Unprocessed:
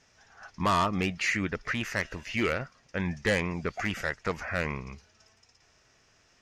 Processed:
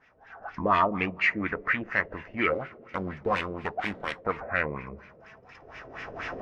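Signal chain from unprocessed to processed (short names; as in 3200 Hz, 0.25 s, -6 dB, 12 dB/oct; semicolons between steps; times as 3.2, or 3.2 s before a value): 2.53–4.18 self-modulated delay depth 0.76 ms; recorder AGC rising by 19 dB/s; low shelf 150 Hz -7 dB; two-slope reverb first 0.3 s, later 3 s, from -18 dB, DRR 9.5 dB; LFO low-pass sine 4.2 Hz 470–2400 Hz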